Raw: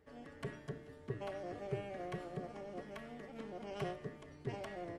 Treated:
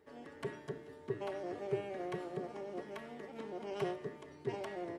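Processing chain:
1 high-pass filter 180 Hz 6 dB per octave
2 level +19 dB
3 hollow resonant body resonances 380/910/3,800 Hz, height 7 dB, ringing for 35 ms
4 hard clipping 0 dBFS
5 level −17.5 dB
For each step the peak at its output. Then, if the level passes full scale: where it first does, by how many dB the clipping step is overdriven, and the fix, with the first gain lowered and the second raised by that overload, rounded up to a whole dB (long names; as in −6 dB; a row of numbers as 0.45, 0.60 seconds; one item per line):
−27.5, −8.5, −5.0, −5.0, −22.5 dBFS
no step passes full scale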